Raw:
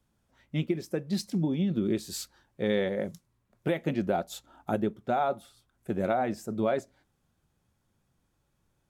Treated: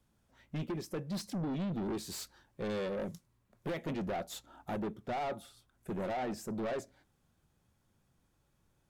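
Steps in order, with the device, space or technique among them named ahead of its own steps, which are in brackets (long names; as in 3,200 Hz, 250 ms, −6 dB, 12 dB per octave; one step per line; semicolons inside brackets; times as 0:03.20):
saturation between pre-emphasis and de-emphasis (high-shelf EQ 4,800 Hz +10 dB; soft clipping −33 dBFS, distortion −6 dB; high-shelf EQ 4,800 Hz −10 dB)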